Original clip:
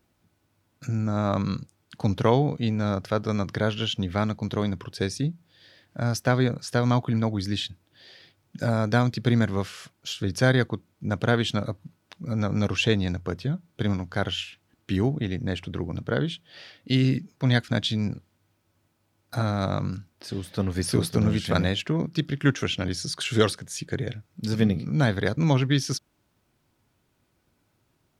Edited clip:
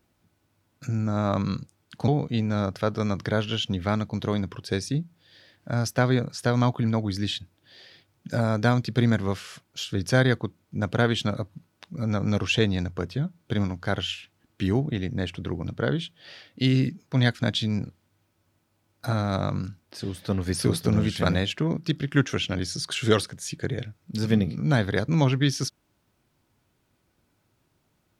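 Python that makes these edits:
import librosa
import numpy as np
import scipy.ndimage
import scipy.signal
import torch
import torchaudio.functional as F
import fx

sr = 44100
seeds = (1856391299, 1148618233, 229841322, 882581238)

y = fx.edit(x, sr, fx.cut(start_s=2.08, length_s=0.29), tone=tone)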